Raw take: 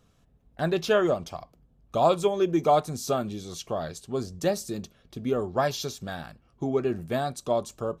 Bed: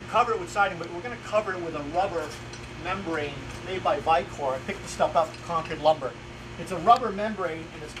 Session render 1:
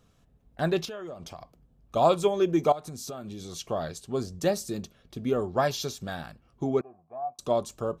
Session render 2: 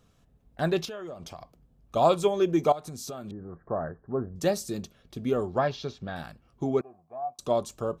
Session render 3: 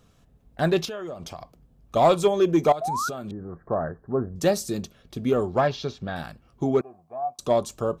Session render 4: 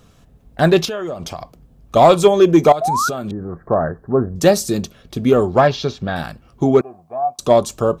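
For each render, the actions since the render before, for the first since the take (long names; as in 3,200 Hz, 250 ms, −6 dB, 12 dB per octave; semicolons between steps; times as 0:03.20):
0:00.85–0:01.96: downward compressor, threshold −37 dBFS; 0:02.72–0:03.56: downward compressor, threshold −35 dBFS; 0:06.81–0:07.39: formant resonators in series a
0:03.31–0:04.36: Butterworth low-pass 1,800 Hz 96 dB per octave; 0:05.58–0:06.16: high-frequency loss of the air 230 metres
in parallel at −3.5 dB: hard clipping −19.5 dBFS, distortion −13 dB; 0:02.81–0:03.09: on the sum: sound drawn into the spectrogram rise 630–1,500 Hz −27 dBFS
level +9 dB; brickwall limiter −1 dBFS, peak gain reduction 2 dB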